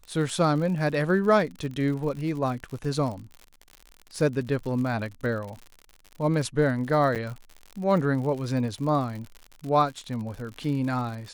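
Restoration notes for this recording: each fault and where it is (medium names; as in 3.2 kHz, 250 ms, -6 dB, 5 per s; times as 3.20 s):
crackle 88 per s -34 dBFS
7.15–7.16 s: dropout 7.8 ms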